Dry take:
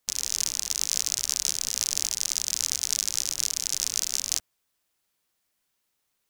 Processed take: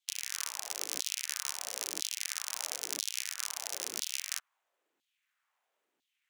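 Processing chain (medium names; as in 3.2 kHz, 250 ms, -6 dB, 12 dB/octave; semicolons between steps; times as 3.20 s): median filter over 9 samples; LFO high-pass saw down 1 Hz 270–3900 Hz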